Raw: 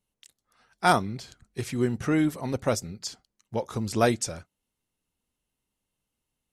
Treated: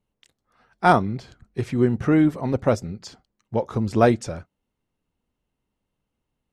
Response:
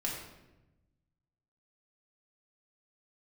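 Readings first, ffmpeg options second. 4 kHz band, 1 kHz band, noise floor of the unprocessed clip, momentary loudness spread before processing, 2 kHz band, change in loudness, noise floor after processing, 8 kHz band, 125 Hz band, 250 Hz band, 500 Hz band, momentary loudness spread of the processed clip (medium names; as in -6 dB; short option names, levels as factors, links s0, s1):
-3.5 dB, +5.0 dB, -84 dBFS, 14 LU, +2.5 dB, +6.0 dB, -81 dBFS, -8.0 dB, +6.5 dB, +6.5 dB, +6.0 dB, 16 LU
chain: -af "lowpass=f=1300:p=1,volume=2.11"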